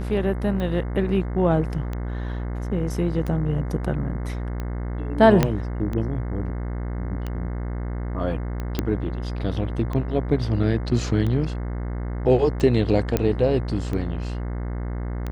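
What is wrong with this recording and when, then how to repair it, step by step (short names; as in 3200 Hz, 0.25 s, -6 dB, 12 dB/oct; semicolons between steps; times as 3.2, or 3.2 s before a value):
buzz 60 Hz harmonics 36 -28 dBFS
tick 45 rpm -18 dBFS
5.43 pop -5 dBFS
8.79 pop -9 dBFS
13.17 pop -8 dBFS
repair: de-click; de-hum 60 Hz, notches 36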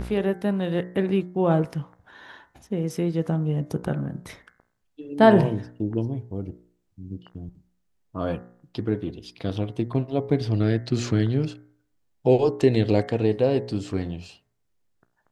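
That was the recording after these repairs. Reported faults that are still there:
5.43 pop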